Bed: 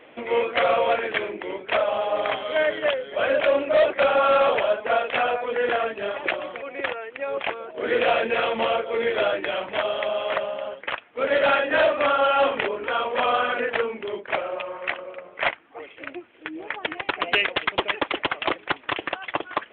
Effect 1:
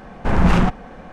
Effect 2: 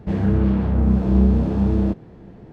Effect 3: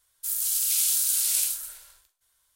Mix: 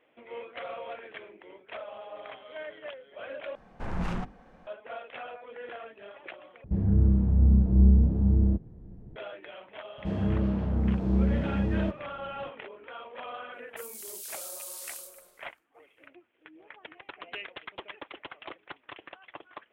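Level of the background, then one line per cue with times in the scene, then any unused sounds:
bed -18.5 dB
3.55 replace with 1 -16.5 dB + notches 50/100/150/200/250/300/350/400/450 Hz
6.64 replace with 2 -18 dB + tilt -4.5 dB/oct
9.98 add 2 -9 dB + vibrato 2.4 Hz 7 cents
13.53 add 3 -17 dB

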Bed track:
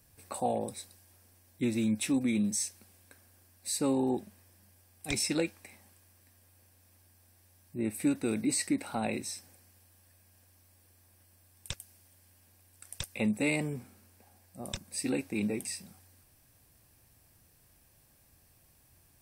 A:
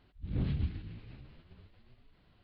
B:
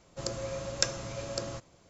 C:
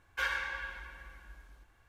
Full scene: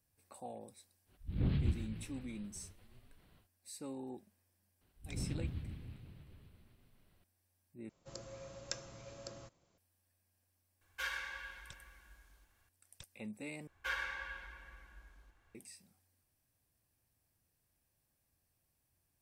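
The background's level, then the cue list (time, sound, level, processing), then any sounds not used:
bed track -16.5 dB
1.05 add A -0.5 dB, fades 0.10 s
4.81 add A -8.5 dB + reverse bouncing-ball echo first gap 0.13 s, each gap 1.15×, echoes 6
7.89 replace with B -14 dB
10.81 add C -9.5 dB + high shelf 3200 Hz +10.5 dB
13.67 replace with C -5.5 dB

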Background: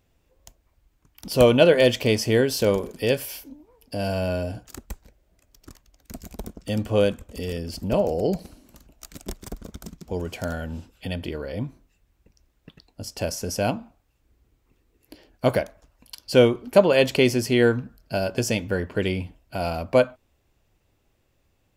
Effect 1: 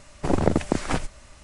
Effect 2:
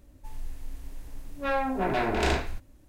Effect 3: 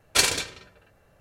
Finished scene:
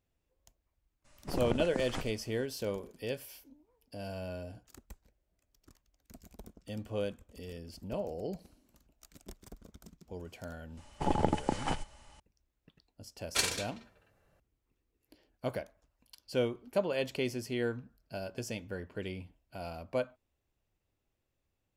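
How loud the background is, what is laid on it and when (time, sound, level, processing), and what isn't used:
background -15 dB
1.04 add 1 -13.5 dB, fades 0.02 s
10.77 add 1 -9.5 dB + small resonant body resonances 850/3000 Hz, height 16 dB, ringing for 60 ms
13.2 add 3 -10 dB
not used: 2

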